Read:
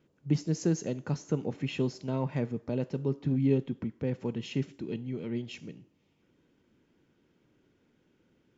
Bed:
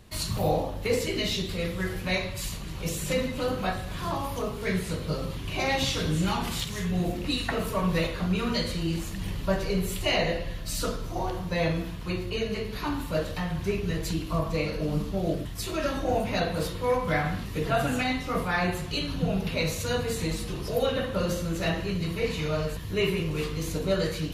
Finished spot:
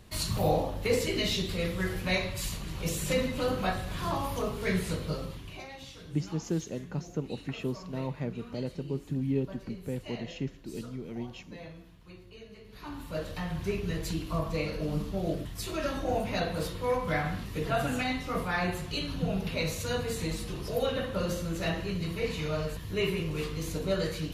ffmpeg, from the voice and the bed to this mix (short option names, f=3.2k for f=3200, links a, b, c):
-filter_complex "[0:a]adelay=5850,volume=-3.5dB[a];[1:a]volume=15dB,afade=t=out:st=4.9:d=0.78:silence=0.11885,afade=t=in:st=12.63:d=0.9:silence=0.158489[b];[a][b]amix=inputs=2:normalize=0"